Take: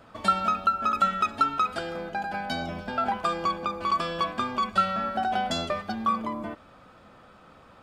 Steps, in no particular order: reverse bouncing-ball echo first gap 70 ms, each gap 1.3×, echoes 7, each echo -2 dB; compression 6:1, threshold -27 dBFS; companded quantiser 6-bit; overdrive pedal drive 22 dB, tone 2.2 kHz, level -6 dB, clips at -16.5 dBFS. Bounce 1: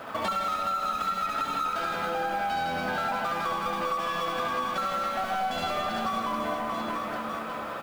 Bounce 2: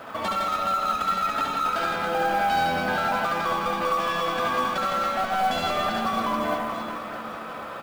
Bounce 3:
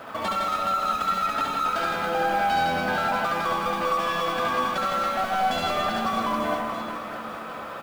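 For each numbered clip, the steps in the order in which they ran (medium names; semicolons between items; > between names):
overdrive pedal > companded quantiser > reverse bouncing-ball echo > compression; overdrive pedal > compression > reverse bouncing-ball echo > companded quantiser; overdrive pedal > companded quantiser > compression > reverse bouncing-ball echo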